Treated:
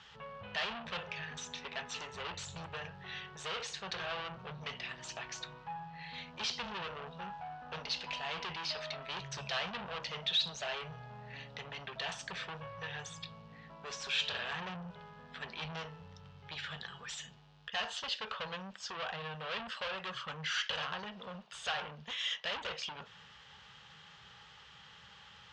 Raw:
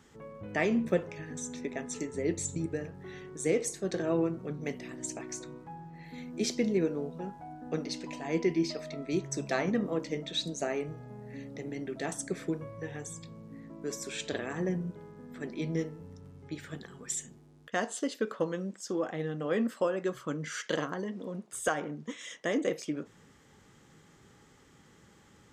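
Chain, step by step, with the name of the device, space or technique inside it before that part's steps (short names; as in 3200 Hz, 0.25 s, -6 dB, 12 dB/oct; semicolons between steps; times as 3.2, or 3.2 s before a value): scooped metal amplifier (tube stage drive 38 dB, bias 0.25; speaker cabinet 84–4200 Hz, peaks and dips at 100 Hz -8 dB, 310 Hz -7 dB, 870 Hz +3 dB, 2100 Hz -6 dB, 2900 Hz +5 dB; passive tone stack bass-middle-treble 10-0-10); gain +14.5 dB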